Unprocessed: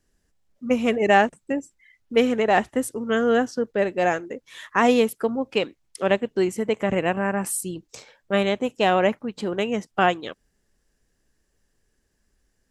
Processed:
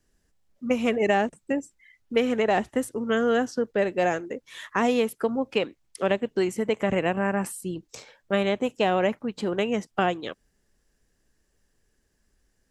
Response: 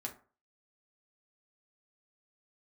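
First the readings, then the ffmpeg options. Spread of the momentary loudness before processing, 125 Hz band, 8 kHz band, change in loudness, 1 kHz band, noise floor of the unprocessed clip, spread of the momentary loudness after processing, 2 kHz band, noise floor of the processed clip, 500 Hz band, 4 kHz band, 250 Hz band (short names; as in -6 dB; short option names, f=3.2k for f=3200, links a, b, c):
11 LU, -1.5 dB, -7.0 dB, -3.0 dB, -4.5 dB, -71 dBFS, 11 LU, -4.0 dB, -72 dBFS, -2.5 dB, -3.0 dB, -2.5 dB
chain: -filter_complex "[0:a]acrossover=split=610|2800[a][b][c];[a]acompressor=threshold=-22dB:ratio=4[d];[b]acompressor=threshold=-26dB:ratio=4[e];[c]acompressor=threshold=-38dB:ratio=4[f];[d][e][f]amix=inputs=3:normalize=0"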